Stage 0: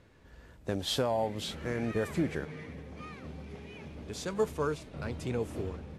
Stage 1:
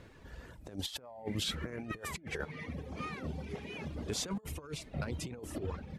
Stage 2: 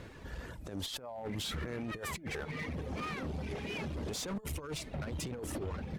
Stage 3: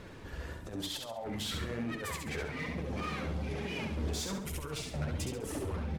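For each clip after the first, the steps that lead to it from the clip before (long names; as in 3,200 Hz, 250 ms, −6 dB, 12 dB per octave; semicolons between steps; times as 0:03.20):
reverb reduction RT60 1 s; compressor whose output falls as the input rises −39 dBFS, ratio −0.5; level +1 dB
brickwall limiter −33.5 dBFS, peak gain reduction 10.5 dB; asymmetric clip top −44 dBFS, bottom −36.5 dBFS; level +6 dB
flanger 1.1 Hz, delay 4.3 ms, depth 10 ms, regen +37%; on a send: repeating echo 68 ms, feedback 38%, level −4 dB; on the sum: level +4 dB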